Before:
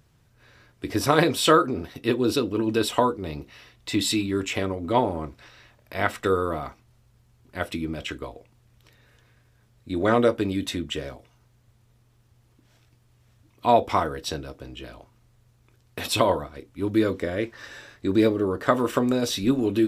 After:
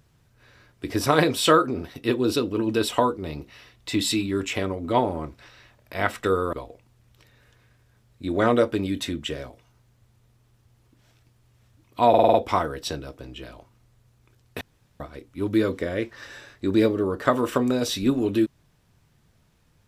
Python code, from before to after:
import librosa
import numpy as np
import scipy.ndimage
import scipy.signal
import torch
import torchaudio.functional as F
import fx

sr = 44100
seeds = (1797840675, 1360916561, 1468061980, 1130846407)

y = fx.edit(x, sr, fx.cut(start_s=6.53, length_s=1.66),
    fx.stutter(start_s=13.75, slice_s=0.05, count=6),
    fx.room_tone_fill(start_s=16.02, length_s=0.39), tone=tone)